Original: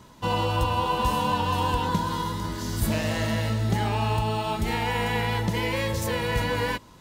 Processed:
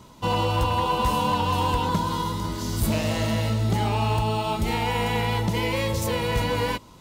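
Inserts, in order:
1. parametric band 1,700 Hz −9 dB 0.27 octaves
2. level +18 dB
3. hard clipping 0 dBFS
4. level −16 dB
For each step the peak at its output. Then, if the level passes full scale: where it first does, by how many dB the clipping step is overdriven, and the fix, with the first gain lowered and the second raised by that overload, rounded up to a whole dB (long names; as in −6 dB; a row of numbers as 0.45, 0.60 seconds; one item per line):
−13.0, +5.0, 0.0, −16.0 dBFS
step 2, 5.0 dB
step 2 +13 dB, step 4 −11 dB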